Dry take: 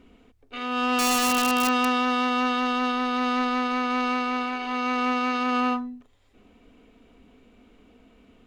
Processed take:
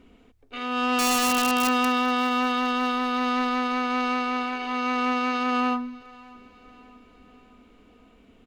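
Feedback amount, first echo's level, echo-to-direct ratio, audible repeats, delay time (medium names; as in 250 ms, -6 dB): 54%, -23.0 dB, -21.5 dB, 3, 599 ms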